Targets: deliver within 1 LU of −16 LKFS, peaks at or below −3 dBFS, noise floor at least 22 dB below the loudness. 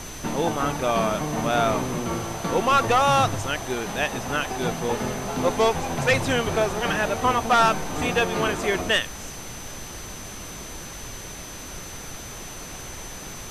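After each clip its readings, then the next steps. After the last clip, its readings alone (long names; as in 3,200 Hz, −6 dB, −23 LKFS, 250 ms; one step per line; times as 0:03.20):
interfering tone 6,100 Hz; level of the tone −41 dBFS; background noise floor −38 dBFS; target noise floor −45 dBFS; integrated loudness −23.0 LKFS; sample peak −9.5 dBFS; target loudness −16.0 LKFS
→ notch filter 6,100 Hz, Q 30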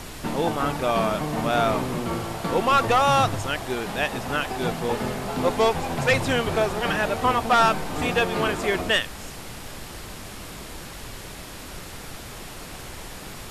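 interfering tone none found; background noise floor −39 dBFS; target noise floor −46 dBFS
→ noise reduction from a noise print 7 dB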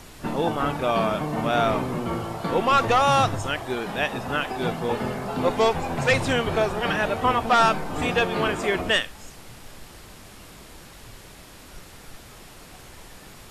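background noise floor −46 dBFS; integrated loudness −23.5 LKFS; sample peak −9.5 dBFS; target loudness −16.0 LKFS
→ level +7.5 dB
brickwall limiter −3 dBFS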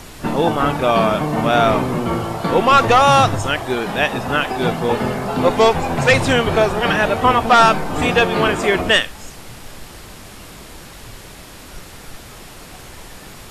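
integrated loudness −16.0 LKFS; sample peak −3.0 dBFS; background noise floor −38 dBFS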